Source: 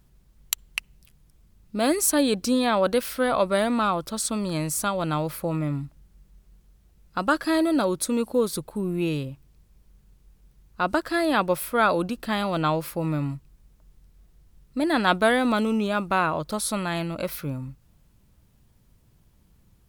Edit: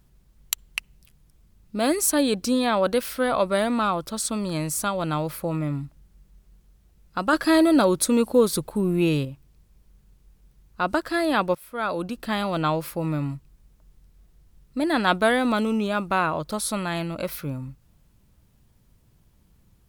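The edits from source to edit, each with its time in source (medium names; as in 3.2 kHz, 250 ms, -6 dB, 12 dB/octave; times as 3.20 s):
7.33–9.25 s: gain +4.5 dB
11.55–12.27 s: fade in, from -20 dB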